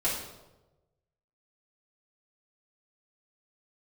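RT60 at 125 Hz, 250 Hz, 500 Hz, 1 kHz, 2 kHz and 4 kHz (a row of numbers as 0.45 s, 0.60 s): 1.4 s, 1.1 s, 1.2 s, 0.95 s, 0.75 s, 0.70 s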